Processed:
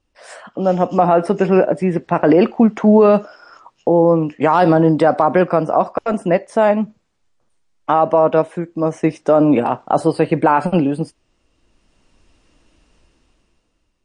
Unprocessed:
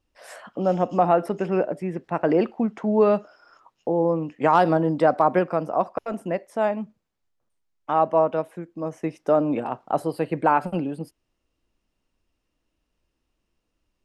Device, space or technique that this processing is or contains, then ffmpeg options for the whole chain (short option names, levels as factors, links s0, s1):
low-bitrate web radio: -af "dynaudnorm=f=240:g=9:m=6.31,alimiter=limit=0.398:level=0:latency=1:release=29,volume=1.78" -ar 22050 -c:a libmp3lame -b:a 40k